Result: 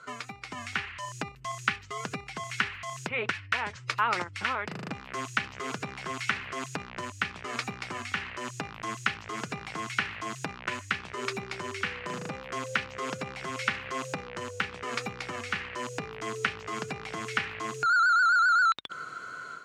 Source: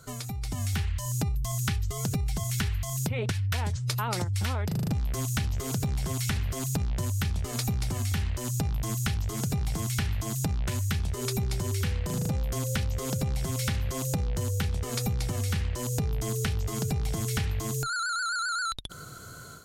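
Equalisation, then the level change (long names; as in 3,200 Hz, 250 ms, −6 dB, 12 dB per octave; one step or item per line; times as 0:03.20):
high-pass filter 300 Hz 12 dB per octave
high-frequency loss of the air 110 metres
flat-topped bell 1,700 Hz +9.5 dB
0.0 dB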